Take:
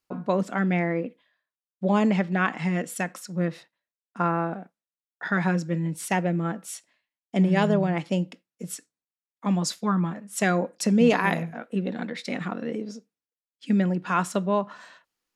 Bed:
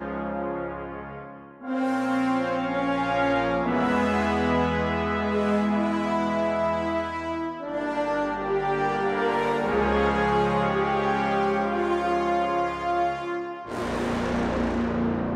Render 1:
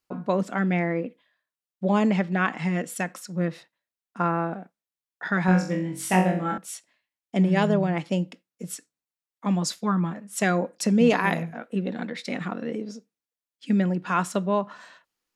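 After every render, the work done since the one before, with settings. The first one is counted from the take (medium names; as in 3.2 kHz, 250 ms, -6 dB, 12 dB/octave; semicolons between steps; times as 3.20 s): 5.46–6.58 s: flutter echo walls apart 3.7 m, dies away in 0.43 s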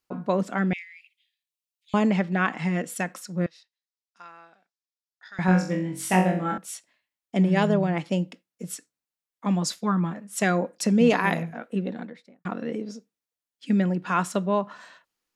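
0.73–1.94 s: steep high-pass 2.3 kHz 48 dB/octave; 3.46–5.39 s: band-pass filter 5 kHz, Q 2.2; 11.71–12.45 s: studio fade out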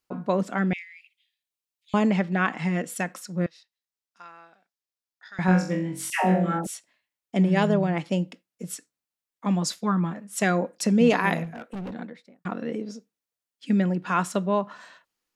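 6.10–6.67 s: phase dispersion lows, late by 141 ms, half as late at 800 Hz; 11.44–11.94 s: overload inside the chain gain 31.5 dB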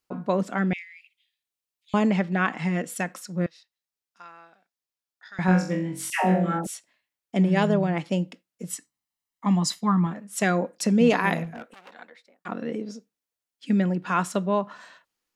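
8.70–10.07 s: comb 1 ms, depth 58%; 11.72–12.48 s: high-pass 1.3 kHz -> 410 Hz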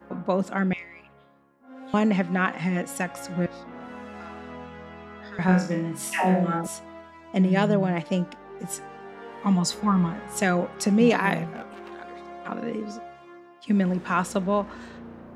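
add bed -17 dB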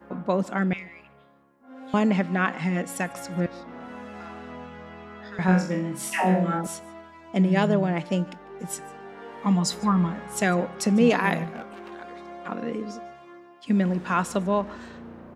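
delay 149 ms -22.5 dB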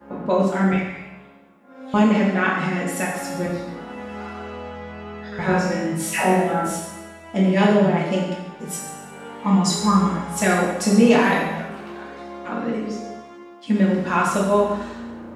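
two-slope reverb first 0.91 s, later 2.3 s, from -23 dB, DRR -4.5 dB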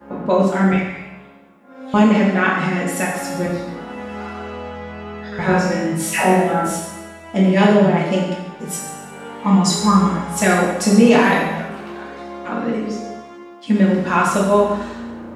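trim +3.5 dB; peak limiter -1 dBFS, peak gain reduction 2 dB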